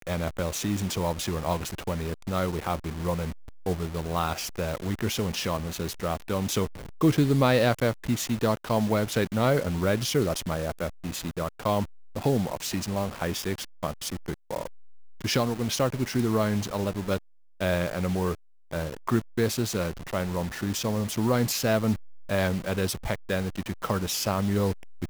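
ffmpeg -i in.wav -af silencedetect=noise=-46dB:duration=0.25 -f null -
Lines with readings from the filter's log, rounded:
silence_start: 17.18
silence_end: 17.61 | silence_duration: 0.42
silence_start: 18.35
silence_end: 18.71 | silence_duration: 0.37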